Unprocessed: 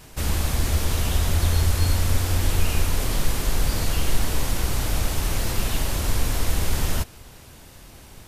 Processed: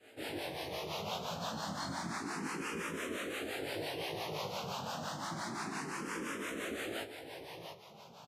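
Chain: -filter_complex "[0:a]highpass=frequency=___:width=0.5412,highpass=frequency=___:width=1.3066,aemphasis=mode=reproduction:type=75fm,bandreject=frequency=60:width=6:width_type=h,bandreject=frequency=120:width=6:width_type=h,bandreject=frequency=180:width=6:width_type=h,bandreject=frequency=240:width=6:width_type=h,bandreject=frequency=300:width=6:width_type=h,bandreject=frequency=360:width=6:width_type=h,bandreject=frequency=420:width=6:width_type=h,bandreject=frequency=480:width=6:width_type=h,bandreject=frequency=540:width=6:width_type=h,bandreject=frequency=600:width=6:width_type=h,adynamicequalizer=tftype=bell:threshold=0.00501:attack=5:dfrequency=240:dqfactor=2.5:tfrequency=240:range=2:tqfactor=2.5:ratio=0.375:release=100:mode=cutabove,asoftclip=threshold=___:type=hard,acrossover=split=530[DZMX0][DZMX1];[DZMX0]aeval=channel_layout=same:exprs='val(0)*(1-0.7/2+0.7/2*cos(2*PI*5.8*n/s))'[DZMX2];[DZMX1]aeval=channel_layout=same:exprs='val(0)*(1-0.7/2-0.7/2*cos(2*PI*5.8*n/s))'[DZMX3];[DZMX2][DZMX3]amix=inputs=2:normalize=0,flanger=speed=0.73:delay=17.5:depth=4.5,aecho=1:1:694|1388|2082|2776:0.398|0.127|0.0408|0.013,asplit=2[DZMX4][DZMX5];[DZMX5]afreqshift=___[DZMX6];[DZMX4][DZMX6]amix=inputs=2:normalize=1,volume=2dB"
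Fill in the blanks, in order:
180, 180, -24.5dB, 0.29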